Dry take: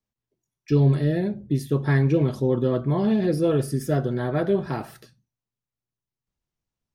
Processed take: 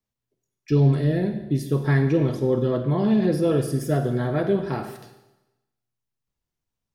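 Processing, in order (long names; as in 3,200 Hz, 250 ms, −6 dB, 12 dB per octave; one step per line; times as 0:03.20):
four-comb reverb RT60 1 s, combs from 33 ms, DRR 7.5 dB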